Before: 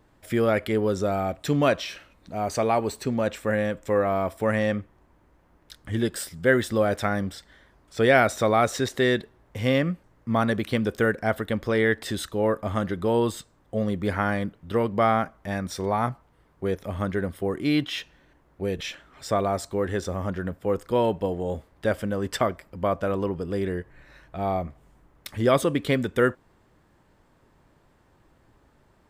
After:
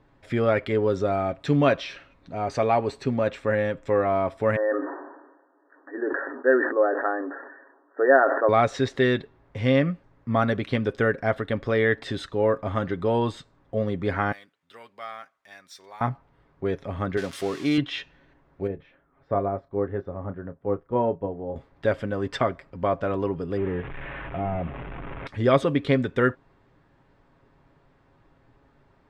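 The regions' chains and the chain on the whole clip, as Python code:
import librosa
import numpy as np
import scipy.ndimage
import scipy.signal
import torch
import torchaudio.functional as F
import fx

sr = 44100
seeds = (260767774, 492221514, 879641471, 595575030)

y = fx.chain(x, sr, fx.brickwall_bandpass(low_hz=260.0, high_hz=1900.0),
    fx.sustainer(db_per_s=52.0), at=(4.56, 8.49))
y = fx.chain(y, sr, fx.resample_bad(factor=2, down='none', up='zero_stuff'),
    fx.differentiator(), at=(14.32, 16.01))
y = fx.chain(y, sr, fx.crossing_spikes(level_db=-20.0),
    fx.highpass(hz=200.0, slope=6), at=(17.17, 17.78))
y = fx.chain(y, sr, fx.lowpass(hz=1200.0, slope=12),
    fx.doubler(ms=30.0, db=-10.5),
    fx.upward_expand(threshold_db=-40.0, expansion=1.5), at=(18.67, 21.56))
y = fx.chain(y, sr, fx.delta_mod(bps=16000, step_db=-40.0),
    fx.air_absorb(metres=110.0),
    fx.env_flatten(amount_pct=50), at=(23.57, 25.27))
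y = scipy.signal.sosfilt(scipy.signal.butter(2, 3900.0, 'lowpass', fs=sr, output='sos'), y)
y = fx.notch(y, sr, hz=3000.0, q=29.0)
y = y + 0.37 * np.pad(y, (int(7.3 * sr / 1000.0), 0))[:len(y)]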